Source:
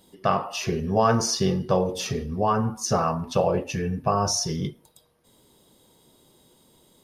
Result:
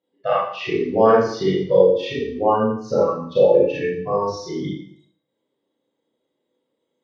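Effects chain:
noise reduction from a noise print of the clip's start 22 dB
loudspeaker in its box 160–3,500 Hz, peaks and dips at 210 Hz −5 dB, 300 Hz +8 dB, 510 Hz +10 dB, 2,000 Hz +6 dB
four-comb reverb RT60 0.59 s, combs from 28 ms, DRR −7 dB
level −3.5 dB

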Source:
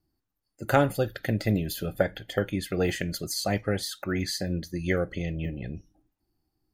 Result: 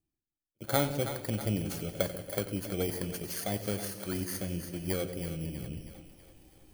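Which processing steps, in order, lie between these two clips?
samples in bit-reversed order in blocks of 16 samples
reversed playback
upward compression, threshold −31 dBFS
reversed playback
echo ahead of the sound 55 ms −20.5 dB
noise gate with hold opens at −44 dBFS
on a send: echo with a time of its own for lows and highs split 520 Hz, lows 140 ms, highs 322 ms, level −10 dB
on the sum: feedback echo with a swinging delay time 92 ms, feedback 56%, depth 57 cents, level −14 dB
level −6.5 dB

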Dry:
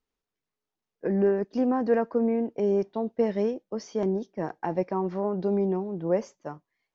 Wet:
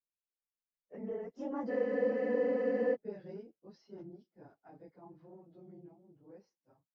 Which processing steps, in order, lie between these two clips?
random phases in long frames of 50 ms
source passing by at 0:01.97, 37 m/s, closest 12 metres
frozen spectrum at 0:01.71, 1.22 s
level −8 dB

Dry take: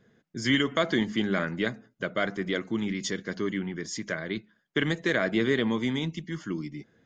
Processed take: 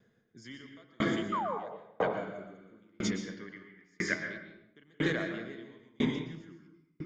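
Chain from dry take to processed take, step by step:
0:03.37–0:04.14: parametric band 1,900 Hz +13 dB 1 octave
0:01.32–0:01.58: sound drawn into the spectrogram fall 400–1,300 Hz −14 dBFS
0:00.99–0:01.57: parametric band 7,500 Hz +14.5 dB 0.33 octaves
0:02.13–0:02.79: healed spectral selection 1,100–6,300 Hz before
convolution reverb RT60 1.7 s, pre-delay 112 ms, DRR −2 dB
tremolo with a ramp in dB decaying 1 Hz, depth 38 dB
level −3.5 dB

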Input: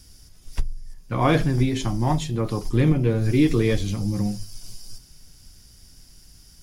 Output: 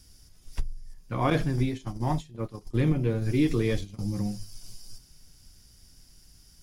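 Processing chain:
0:01.30–0:03.99: noise gate −22 dBFS, range −16 dB
level −5.5 dB

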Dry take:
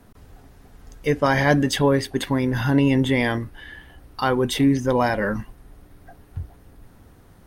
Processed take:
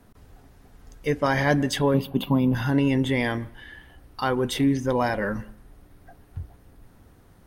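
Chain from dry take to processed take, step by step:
0:01.94–0:02.55: drawn EQ curve 110 Hz 0 dB, 180 Hz +13 dB, 360 Hz −2 dB, 650 Hz +3 dB, 1,200 Hz +2 dB, 1,800 Hz −22 dB, 2,800 Hz +6 dB, 5,500 Hz −13 dB, 8,500 Hz −15 dB, 13,000 Hz +8 dB
on a send: convolution reverb RT60 0.50 s, pre-delay 125 ms, DRR 22.5 dB
on the sum: level −3.5 dB

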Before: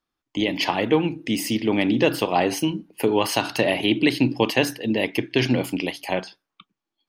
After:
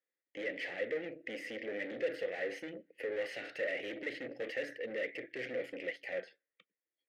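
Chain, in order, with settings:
tube saturation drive 29 dB, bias 0.65
pair of resonant band-passes 990 Hz, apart 1.9 octaves
level +3.5 dB

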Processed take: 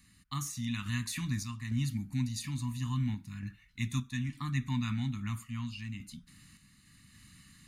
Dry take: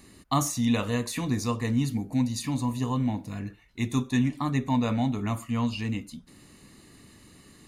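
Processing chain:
Chebyshev band-stop filter 180–1,500 Hz, order 2
sample-and-hold tremolo, depth 55%
level −1.5 dB

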